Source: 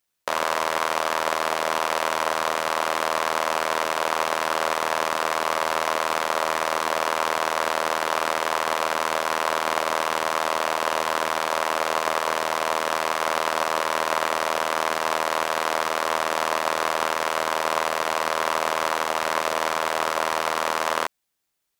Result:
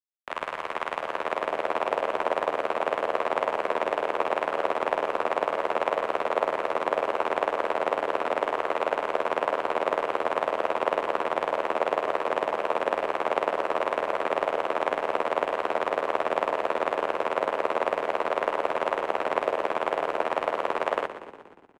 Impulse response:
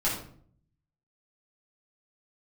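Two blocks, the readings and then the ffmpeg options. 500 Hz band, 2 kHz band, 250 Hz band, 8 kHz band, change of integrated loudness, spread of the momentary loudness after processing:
+0.5 dB, -6.5 dB, -0.5 dB, under -20 dB, -3.5 dB, 1 LU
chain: -filter_complex "[0:a]lowpass=f=9.7k:w=0.5412,lowpass=f=9.7k:w=1.3066,tremolo=f=98:d=0.947,acrossover=split=370|600|4300[a][b][c][d];[b]dynaudnorm=f=490:g=5:m=15.5dB[e];[a][e][c][d]amix=inputs=4:normalize=0,aeval=exprs='sgn(val(0))*max(abs(val(0))-0.00631,0)':c=same,highshelf=f=3.6k:t=q:w=1.5:g=-9.5,asplit=8[f][g][h][i][j][k][l][m];[g]adelay=119,afreqshift=-32,volume=-12.5dB[n];[h]adelay=238,afreqshift=-64,volume=-16.5dB[o];[i]adelay=357,afreqshift=-96,volume=-20.5dB[p];[j]adelay=476,afreqshift=-128,volume=-24.5dB[q];[k]adelay=595,afreqshift=-160,volume=-28.6dB[r];[l]adelay=714,afreqshift=-192,volume=-32.6dB[s];[m]adelay=833,afreqshift=-224,volume=-36.6dB[t];[f][n][o][p][q][r][s][t]amix=inputs=8:normalize=0,volume=-5dB"

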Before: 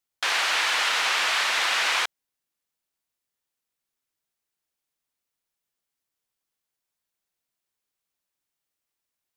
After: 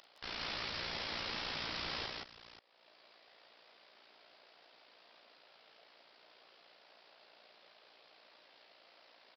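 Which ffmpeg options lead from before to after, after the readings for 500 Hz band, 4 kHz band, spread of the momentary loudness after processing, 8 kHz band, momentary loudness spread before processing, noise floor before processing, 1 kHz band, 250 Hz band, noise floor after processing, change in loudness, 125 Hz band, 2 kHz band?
-10.0 dB, -15.5 dB, 12 LU, -28.5 dB, 4 LU, -85 dBFS, -18.0 dB, +0.5 dB, -65 dBFS, -17.5 dB, n/a, -20.0 dB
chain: -filter_complex "[0:a]highpass=320,equalizer=f=620:t=o:w=0.64:g=9,alimiter=limit=-21.5dB:level=0:latency=1:release=16,acompressor=mode=upward:threshold=-37dB:ratio=2.5,aresample=11025,aeval=exprs='(mod(70.8*val(0)+1,2)-1)/70.8':c=same,aresample=44100,tremolo=f=58:d=0.974,asplit=2[a][b];[b]aecho=0:1:41|163|176|533:0.501|0.596|0.631|0.211[c];[a][c]amix=inputs=2:normalize=0,volume=2dB"

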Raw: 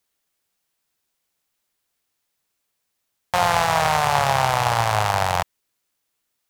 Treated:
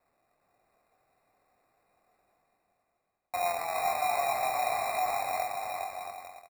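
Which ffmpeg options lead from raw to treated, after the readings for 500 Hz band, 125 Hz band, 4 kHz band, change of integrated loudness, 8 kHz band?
-8.0 dB, -31.0 dB, -15.0 dB, -11.0 dB, -10.5 dB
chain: -filter_complex "[0:a]asplit=3[a][b][c];[a]bandpass=f=730:t=q:w=8,volume=0dB[d];[b]bandpass=f=1.09k:t=q:w=8,volume=-6dB[e];[c]bandpass=f=2.44k:t=q:w=8,volume=-9dB[f];[d][e][f]amix=inputs=3:normalize=0,asplit=2[g][h];[h]adelay=23,volume=-5dB[i];[g][i]amix=inputs=2:normalize=0,areverse,acompressor=mode=upward:threshold=-45dB:ratio=2.5,areverse,acrusher=samples=14:mix=1:aa=0.000001,equalizer=f=4.9k:w=1.2:g=-7.5,asplit=2[j][k];[k]aecho=0:1:410|676.5|849.7|962.3|1036:0.631|0.398|0.251|0.158|0.1[l];[j][l]amix=inputs=2:normalize=0,volume=-6.5dB"

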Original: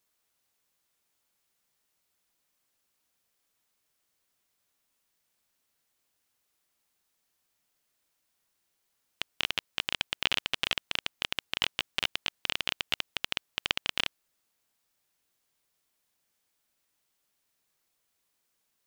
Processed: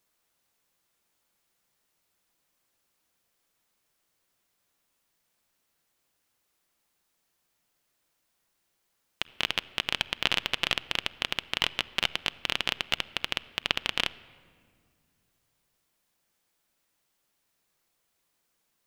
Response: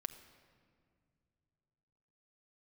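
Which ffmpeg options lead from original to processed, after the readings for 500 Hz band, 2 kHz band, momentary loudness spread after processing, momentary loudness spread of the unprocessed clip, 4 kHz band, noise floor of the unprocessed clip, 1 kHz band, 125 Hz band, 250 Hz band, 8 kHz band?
+4.0 dB, +2.5 dB, 5 LU, 5 LU, +2.0 dB, -78 dBFS, +4.0 dB, +4.5 dB, +4.5 dB, +1.0 dB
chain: -filter_complex "[0:a]asplit=2[a][b];[1:a]atrim=start_sample=2205,highshelf=f=3.4k:g=-10[c];[b][c]afir=irnorm=-1:irlink=0,volume=2dB[d];[a][d]amix=inputs=2:normalize=0,volume=-1.5dB"

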